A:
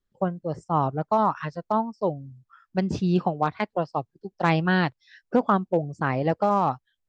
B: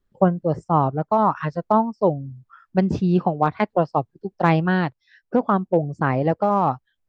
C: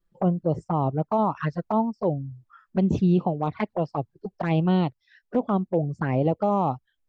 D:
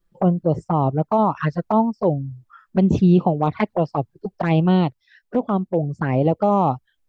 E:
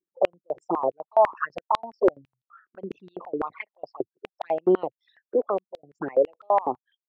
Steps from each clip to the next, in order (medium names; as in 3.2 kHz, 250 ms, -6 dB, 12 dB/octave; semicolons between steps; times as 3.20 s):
treble shelf 2.5 kHz -10 dB; gain riding 0.5 s; trim +5 dB
peak limiter -11.5 dBFS, peak gain reduction 8 dB; touch-sensitive flanger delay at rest 6 ms, full sweep at -18.5 dBFS
gain riding 2 s; trim +4.5 dB
resonances exaggerated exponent 2; step-sequenced high-pass 12 Hz 360–3700 Hz; trim -7.5 dB